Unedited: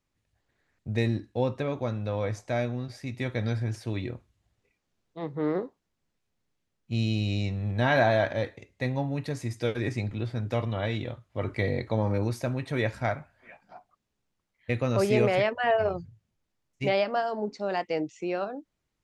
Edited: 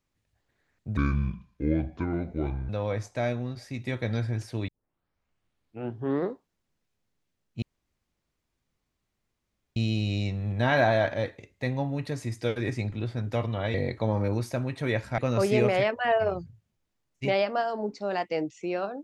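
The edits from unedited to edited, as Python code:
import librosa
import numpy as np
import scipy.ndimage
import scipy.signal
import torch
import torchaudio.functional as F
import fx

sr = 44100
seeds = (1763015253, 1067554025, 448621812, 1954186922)

y = fx.edit(x, sr, fx.speed_span(start_s=0.97, length_s=1.05, speed=0.61),
    fx.tape_start(start_s=4.01, length_s=1.58),
    fx.insert_room_tone(at_s=6.95, length_s=2.14),
    fx.cut(start_s=10.93, length_s=0.71),
    fx.cut(start_s=13.08, length_s=1.69), tone=tone)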